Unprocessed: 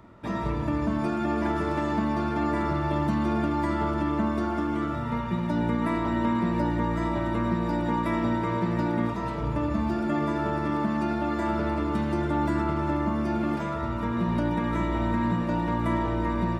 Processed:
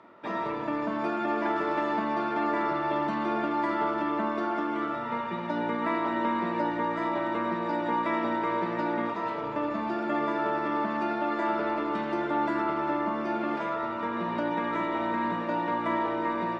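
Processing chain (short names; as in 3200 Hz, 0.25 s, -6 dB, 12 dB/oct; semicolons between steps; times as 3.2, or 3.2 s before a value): BPF 380–3700 Hz; gain +2 dB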